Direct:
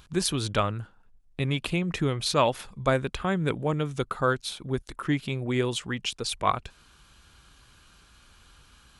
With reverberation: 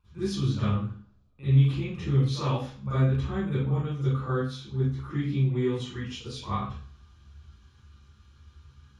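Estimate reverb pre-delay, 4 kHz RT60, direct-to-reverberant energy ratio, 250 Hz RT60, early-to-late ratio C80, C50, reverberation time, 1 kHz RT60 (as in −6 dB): 38 ms, 0.45 s, −15.0 dB, 0.55 s, 1.0 dB, −7.0 dB, 0.45 s, 0.40 s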